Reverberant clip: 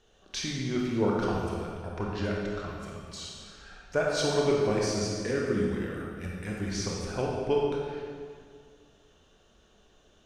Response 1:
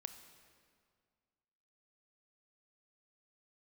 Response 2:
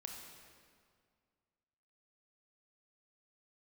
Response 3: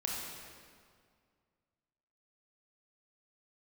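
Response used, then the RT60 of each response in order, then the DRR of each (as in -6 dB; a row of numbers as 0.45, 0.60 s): 3; 2.0, 2.0, 2.0 s; 8.5, 1.0, -3.0 dB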